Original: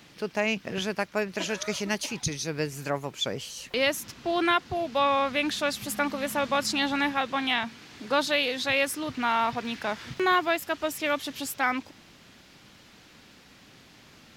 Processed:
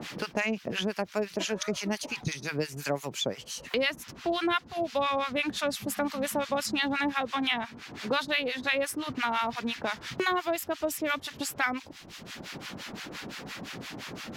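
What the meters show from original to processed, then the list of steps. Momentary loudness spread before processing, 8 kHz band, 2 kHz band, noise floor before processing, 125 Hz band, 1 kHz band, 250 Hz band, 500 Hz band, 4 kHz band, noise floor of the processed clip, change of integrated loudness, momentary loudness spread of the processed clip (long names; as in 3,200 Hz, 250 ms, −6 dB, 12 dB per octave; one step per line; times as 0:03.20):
8 LU, −2.5 dB, −2.5 dB, −54 dBFS, −1.5 dB, −4.0 dB, −1.5 dB, −2.5 dB, −2.5 dB, −49 dBFS, −3.5 dB, 12 LU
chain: two-band tremolo in antiphase 5.8 Hz, depth 100%, crossover 940 Hz
multiband upward and downward compressor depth 70%
level +2 dB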